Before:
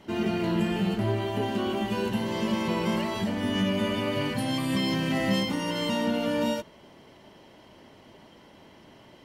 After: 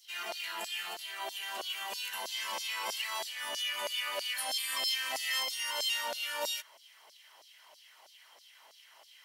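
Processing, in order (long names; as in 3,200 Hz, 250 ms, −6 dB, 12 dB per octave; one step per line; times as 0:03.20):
auto-filter high-pass saw down 3.1 Hz 610–5,300 Hz
RIAA equalisation recording
level −7 dB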